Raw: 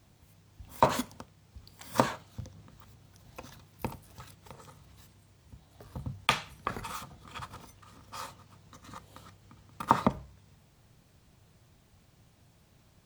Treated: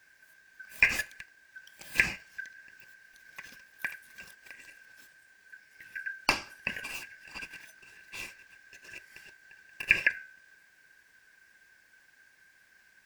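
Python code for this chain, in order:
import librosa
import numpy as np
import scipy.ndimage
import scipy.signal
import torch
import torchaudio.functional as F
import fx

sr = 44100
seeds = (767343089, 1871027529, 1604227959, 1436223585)

y = fx.band_shuffle(x, sr, order='2143')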